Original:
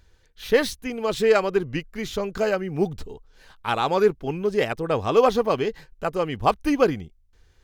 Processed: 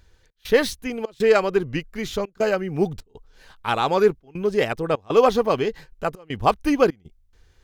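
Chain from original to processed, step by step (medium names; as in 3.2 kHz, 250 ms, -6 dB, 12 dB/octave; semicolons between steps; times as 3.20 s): trance gate "xx.xxxx.xxxxx" 100 bpm -24 dB; trim +1.5 dB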